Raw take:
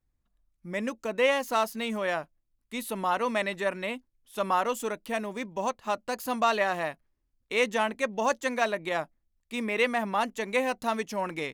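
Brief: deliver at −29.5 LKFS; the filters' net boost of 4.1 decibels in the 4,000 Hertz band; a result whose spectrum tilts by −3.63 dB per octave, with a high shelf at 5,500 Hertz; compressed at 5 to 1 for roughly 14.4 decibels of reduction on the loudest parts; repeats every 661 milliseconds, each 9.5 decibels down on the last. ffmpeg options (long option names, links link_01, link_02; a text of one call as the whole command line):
ffmpeg -i in.wav -af "equalizer=frequency=4000:width_type=o:gain=6.5,highshelf=frequency=5500:gain=-3.5,acompressor=threshold=-36dB:ratio=5,aecho=1:1:661|1322|1983|2644:0.335|0.111|0.0365|0.012,volume=10dB" out.wav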